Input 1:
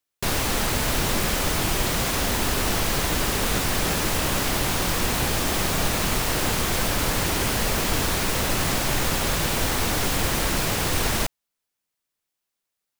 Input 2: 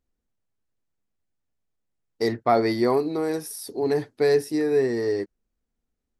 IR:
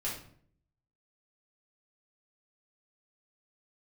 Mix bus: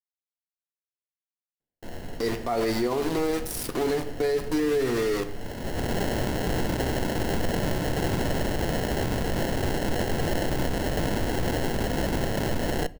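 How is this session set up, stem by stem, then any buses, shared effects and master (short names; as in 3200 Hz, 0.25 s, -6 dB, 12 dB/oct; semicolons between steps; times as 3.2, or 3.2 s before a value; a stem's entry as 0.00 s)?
-3.5 dB, 1.60 s, send -19.5 dB, bell 7500 Hz +10.5 dB 0.25 oct; sample-rate reducer 1200 Hz, jitter 0%; auto duck -22 dB, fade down 1.10 s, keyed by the second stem
-1.0 dB, 0.00 s, send -9.5 dB, upward compressor, threshold -22 dBFS; sample gate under -27 dBFS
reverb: on, RT60 0.60 s, pre-delay 4 ms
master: limiter -17.5 dBFS, peak gain reduction 11.5 dB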